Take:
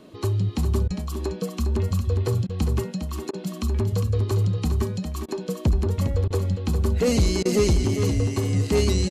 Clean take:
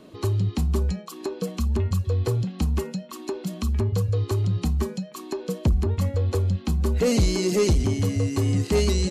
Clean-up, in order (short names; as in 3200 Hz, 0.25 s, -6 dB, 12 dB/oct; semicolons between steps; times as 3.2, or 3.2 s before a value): interpolate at 0.88/2.47/3.31/5.26/6.28/7.43, 22 ms; inverse comb 0.406 s -7.5 dB